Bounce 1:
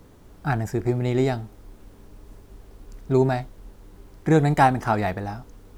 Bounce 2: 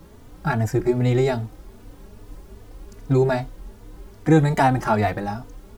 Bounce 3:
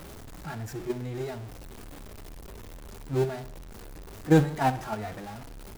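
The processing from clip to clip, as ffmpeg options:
ffmpeg -i in.wav -filter_complex "[0:a]asplit=2[link_01][link_02];[link_02]alimiter=limit=-16dB:level=0:latency=1:release=112,volume=2dB[link_03];[link_01][link_03]amix=inputs=2:normalize=0,asplit=2[link_04][link_05];[link_05]adelay=3.3,afreqshift=2.5[link_06];[link_04][link_06]amix=inputs=2:normalize=1" out.wav
ffmpeg -i in.wav -af "aeval=exprs='val(0)+0.5*0.1*sgn(val(0))':channel_layout=same,agate=range=-14dB:threshold=-13dB:ratio=16:detection=peak,aecho=1:1:61|122|183|244|305:0.158|0.0856|0.0462|0.025|0.0135,volume=-4.5dB" out.wav

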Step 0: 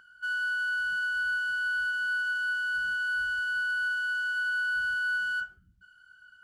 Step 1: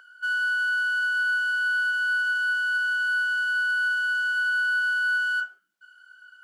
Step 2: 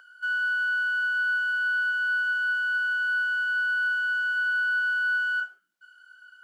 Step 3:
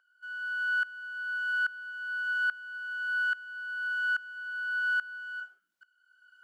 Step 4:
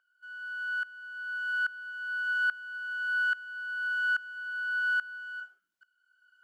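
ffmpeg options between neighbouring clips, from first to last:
ffmpeg -i in.wav -af "highpass=frequency=460:width=0.5412,highpass=frequency=460:width=1.3066,volume=5dB" out.wav
ffmpeg -i in.wav -filter_complex "[0:a]acrossover=split=3300[link_01][link_02];[link_02]acompressor=threshold=-52dB:ratio=4:attack=1:release=60[link_03];[link_01][link_03]amix=inputs=2:normalize=0,volume=-1dB" out.wav
ffmpeg -i in.wav -af "aeval=exprs='val(0)*pow(10,-20*if(lt(mod(-1.2*n/s,1),2*abs(-1.2)/1000),1-mod(-1.2*n/s,1)/(2*abs(-1.2)/1000),(mod(-1.2*n/s,1)-2*abs(-1.2)/1000)/(1-2*abs(-1.2)/1000))/20)':channel_layout=same" out.wav
ffmpeg -i in.wav -af "dynaudnorm=framelen=330:gausssize=9:maxgain=5.5dB,volume=-4.5dB" out.wav

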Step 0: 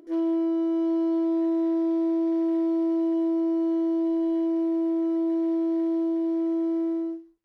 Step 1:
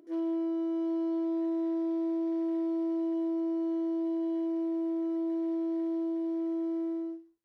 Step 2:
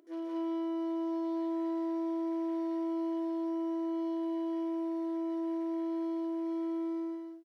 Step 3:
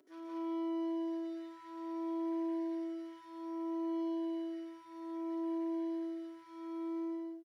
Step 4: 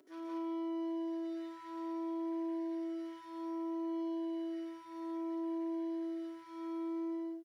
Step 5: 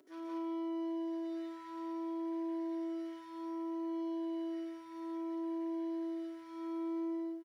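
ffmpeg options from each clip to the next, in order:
ffmpeg -i in.wav -af "highpass=64,volume=-6.5dB" out.wav
ffmpeg -i in.wav -af "lowshelf=frequency=390:gain=-11.5,aecho=1:1:174.9|227.4:0.891|0.708" out.wav
ffmpeg -i in.wav -filter_complex "[0:a]acrossover=split=340|840|1300[link_01][link_02][link_03][link_04];[link_02]alimiter=level_in=21dB:limit=-24dB:level=0:latency=1,volume=-21dB[link_05];[link_01][link_05][link_03][link_04]amix=inputs=4:normalize=0,asplit=2[link_06][link_07];[link_07]adelay=4.9,afreqshift=0.62[link_08];[link_06][link_08]amix=inputs=2:normalize=1,volume=1dB" out.wav
ffmpeg -i in.wav -af "acompressor=threshold=-39dB:ratio=6,volume=3dB" out.wav
ffmpeg -i in.wav -af "aecho=1:1:1034:0.158" out.wav

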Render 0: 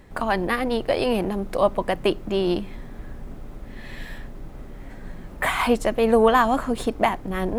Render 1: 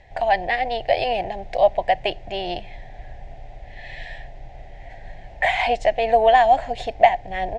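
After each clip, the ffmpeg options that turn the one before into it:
ffmpeg -i in.wav -af "firequalizer=gain_entry='entry(120,0);entry(210,-16);entry(480,-4);entry(720,13);entry(1200,-20);entry(1800,6);entry(6900,-4);entry(11000,-28)':delay=0.05:min_phase=1,volume=-1dB" out.wav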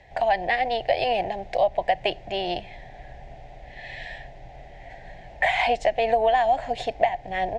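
ffmpeg -i in.wav -filter_complex "[0:a]acrossover=split=130[link_01][link_02];[link_02]acompressor=threshold=-17dB:ratio=6[link_03];[link_01][link_03]amix=inputs=2:normalize=0,highpass=frequency=57:poles=1,bandreject=frequency=50:width_type=h:width=6,bandreject=frequency=100:width_type=h:width=6" out.wav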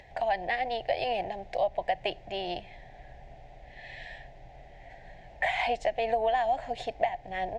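ffmpeg -i in.wav -af "acompressor=mode=upward:threshold=-41dB:ratio=2.5,volume=-6.5dB" out.wav

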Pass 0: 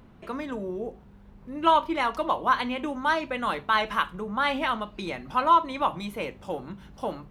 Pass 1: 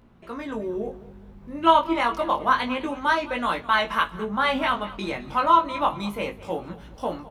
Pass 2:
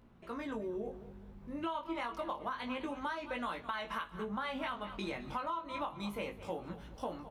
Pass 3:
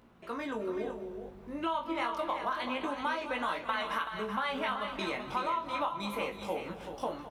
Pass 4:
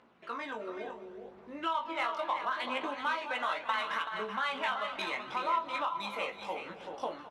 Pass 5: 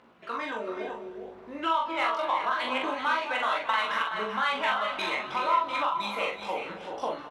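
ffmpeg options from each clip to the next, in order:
ffmpeg -i in.wav -af "dynaudnorm=framelen=280:gausssize=3:maxgain=6dB,flanger=delay=17:depth=4.4:speed=0.28,aecho=1:1:210|420|630:0.126|0.0466|0.0172" out.wav
ffmpeg -i in.wav -af "alimiter=limit=-12.5dB:level=0:latency=1:release=223,acompressor=threshold=-29dB:ratio=5,volume=-6.5dB" out.wav
ffmpeg -i in.wav -filter_complex "[0:a]lowshelf=frequency=180:gain=-11,asplit=2[link_01][link_02];[link_02]adelay=43,volume=-14dB[link_03];[link_01][link_03]amix=inputs=2:normalize=0,asplit=2[link_04][link_05];[link_05]aecho=0:1:318|380:0.141|0.398[link_06];[link_04][link_06]amix=inputs=2:normalize=0,volume=5.5dB" out.wav
ffmpeg -i in.wav -af "highpass=frequency=810:poles=1,aphaser=in_gain=1:out_gain=1:delay=1.6:decay=0.3:speed=0.72:type=triangular,adynamicsmooth=sensitivity=7.5:basefreq=4900,volume=2.5dB" out.wav
ffmpeg -i in.wav -filter_complex "[0:a]asplit=2[link_01][link_02];[link_02]adelay=43,volume=-5dB[link_03];[link_01][link_03]amix=inputs=2:normalize=0,volume=4dB" out.wav

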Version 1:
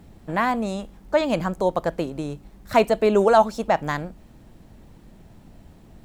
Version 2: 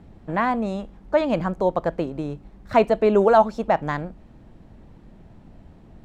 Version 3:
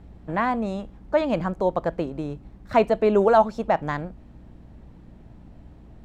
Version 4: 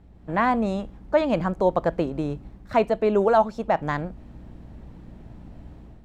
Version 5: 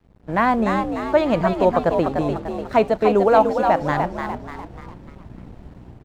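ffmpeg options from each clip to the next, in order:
ffmpeg -i in.wav -af "aemphasis=mode=reproduction:type=75fm" out.wav
ffmpeg -i in.wav -af "aeval=exprs='val(0)+0.00501*(sin(2*PI*60*n/s)+sin(2*PI*2*60*n/s)/2+sin(2*PI*3*60*n/s)/3+sin(2*PI*4*60*n/s)/4+sin(2*PI*5*60*n/s)/5)':channel_layout=same,volume=-1.5dB" out.wav
ffmpeg -i in.wav -af "dynaudnorm=framelen=120:gausssize=5:maxgain=9dB,volume=-5.5dB" out.wav
ffmpeg -i in.wav -filter_complex "[0:a]asplit=6[link_01][link_02][link_03][link_04][link_05][link_06];[link_02]adelay=296,afreqshift=62,volume=-5.5dB[link_07];[link_03]adelay=592,afreqshift=124,volume=-12.6dB[link_08];[link_04]adelay=888,afreqshift=186,volume=-19.8dB[link_09];[link_05]adelay=1184,afreqshift=248,volume=-26.9dB[link_10];[link_06]adelay=1480,afreqshift=310,volume=-34dB[link_11];[link_01][link_07][link_08][link_09][link_10][link_11]amix=inputs=6:normalize=0,aeval=exprs='sgn(val(0))*max(abs(val(0))-0.00316,0)':channel_layout=same,volume=3.5dB" out.wav

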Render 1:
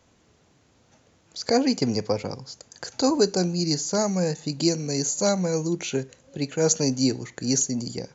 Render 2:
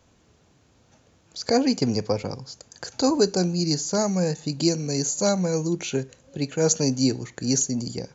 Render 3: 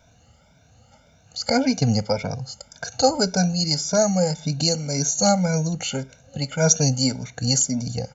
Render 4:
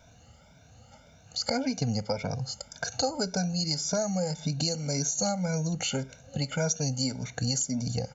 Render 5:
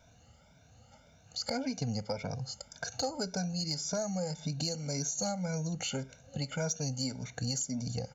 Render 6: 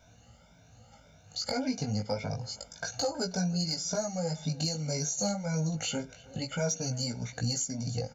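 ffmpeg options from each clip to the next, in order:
ffmpeg -i in.wav -af "lowshelf=frequency=110:gain=5,bandreject=frequency=2000:width=21" out.wav
ffmpeg -i in.wav -af "afftfilt=real='re*pow(10,11/40*sin(2*PI*(1.6*log(max(b,1)*sr/1024/100)/log(2)-(1.8)*(pts-256)/sr)))':imag='im*pow(10,11/40*sin(2*PI*(1.6*log(max(b,1)*sr/1024/100)/log(2)-(1.8)*(pts-256)/sr)))':win_size=1024:overlap=0.75,aecho=1:1:1.4:0.94" out.wav
ffmpeg -i in.wav -af "acompressor=threshold=-27dB:ratio=4" out.wav
ffmpeg -i in.wav -af "asoftclip=type=tanh:threshold=-15dB,volume=-5dB" out.wav
ffmpeg -i in.wav -filter_complex "[0:a]flanger=delay=17:depth=2.5:speed=0.29,asplit=2[link_01][link_02];[link_02]adelay=320,highpass=300,lowpass=3400,asoftclip=type=hard:threshold=-33dB,volume=-19dB[link_03];[link_01][link_03]amix=inputs=2:normalize=0,volume=5.5dB" out.wav

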